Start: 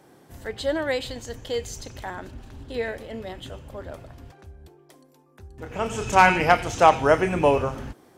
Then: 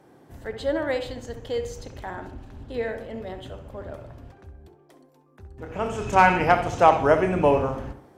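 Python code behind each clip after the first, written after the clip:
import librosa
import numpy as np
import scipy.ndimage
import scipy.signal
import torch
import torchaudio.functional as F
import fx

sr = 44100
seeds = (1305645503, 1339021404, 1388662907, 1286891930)

y = fx.high_shelf(x, sr, hz=2600.0, db=-8.5)
y = fx.echo_tape(y, sr, ms=66, feedback_pct=53, wet_db=-7, lp_hz=1600.0, drive_db=8.0, wow_cents=16)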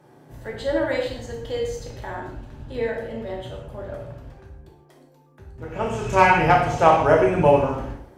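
y = fx.rev_gated(x, sr, seeds[0], gate_ms=190, shape='falling', drr_db=-1.0)
y = F.gain(torch.from_numpy(y), -1.0).numpy()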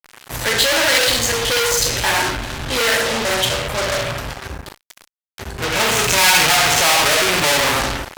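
y = fx.fuzz(x, sr, gain_db=39.0, gate_db=-45.0)
y = fx.tilt_shelf(y, sr, db=-9.0, hz=1100.0)
y = F.gain(torch.from_numpy(y), -1.0).numpy()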